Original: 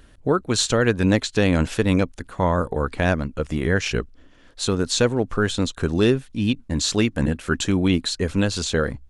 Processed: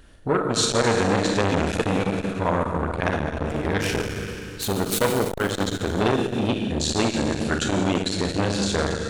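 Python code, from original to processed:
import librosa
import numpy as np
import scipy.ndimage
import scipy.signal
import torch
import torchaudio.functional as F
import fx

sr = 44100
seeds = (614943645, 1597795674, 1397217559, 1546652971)

y = fx.self_delay(x, sr, depth_ms=0.18, at=(3.12, 5.5))
y = fx.doubler(y, sr, ms=41.0, db=-12.5)
y = fx.rev_schroeder(y, sr, rt60_s=2.4, comb_ms=27, drr_db=1.0)
y = fx.transformer_sat(y, sr, knee_hz=1300.0)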